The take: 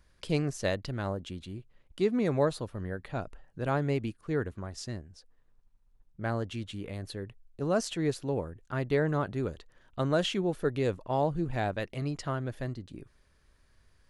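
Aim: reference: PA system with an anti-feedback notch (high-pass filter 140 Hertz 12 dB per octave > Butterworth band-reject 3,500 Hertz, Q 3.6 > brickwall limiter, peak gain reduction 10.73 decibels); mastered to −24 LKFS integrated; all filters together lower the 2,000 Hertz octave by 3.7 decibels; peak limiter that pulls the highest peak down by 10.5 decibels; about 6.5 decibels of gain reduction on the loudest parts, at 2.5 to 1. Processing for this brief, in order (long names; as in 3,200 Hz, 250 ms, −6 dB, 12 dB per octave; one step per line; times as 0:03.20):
parametric band 2,000 Hz −5 dB
downward compressor 2.5 to 1, threshold −32 dBFS
brickwall limiter −32.5 dBFS
high-pass filter 140 Hz 12 dB per octave
Butterworth band-reject 3,500 Hz, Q 3.6
level +25 dB
brickwall limiter −13.5 dBFS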